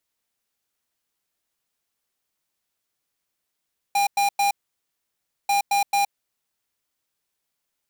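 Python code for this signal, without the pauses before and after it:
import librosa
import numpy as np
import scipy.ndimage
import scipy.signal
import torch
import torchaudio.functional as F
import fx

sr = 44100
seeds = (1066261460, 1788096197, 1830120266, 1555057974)

y = fx.beep_pattern(sr, wave='square', hz=805.0, on_s=0.12, off_s=0.1, beeps=3, pause_s=0.98, groups=2, level_db=-20.0)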